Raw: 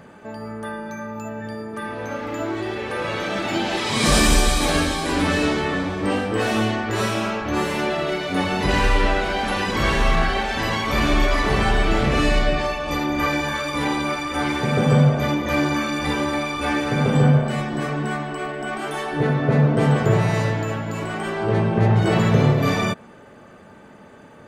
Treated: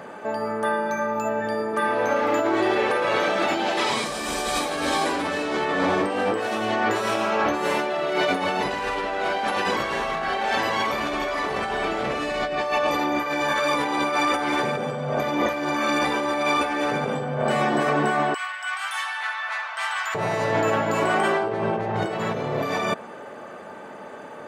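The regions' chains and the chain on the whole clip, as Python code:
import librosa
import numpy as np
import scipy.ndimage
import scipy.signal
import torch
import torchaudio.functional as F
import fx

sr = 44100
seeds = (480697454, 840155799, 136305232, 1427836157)

y = fx.chain(x, sr, fx.bessel_highpass(hz=1700.0, order=8),
    fx.high_shelf(hz=9800.0, db=-4.0), at=(18.34, 20.15))
y = fx.highpass(y, sr, hz=360.0, slope=6)
y = fx.peak_eq(y, sr, hz=680.0, db=7.0, octaves=2.4)
y = fx.over_compress(y, sr, threshold_db=-24.0, ratio=-1.0)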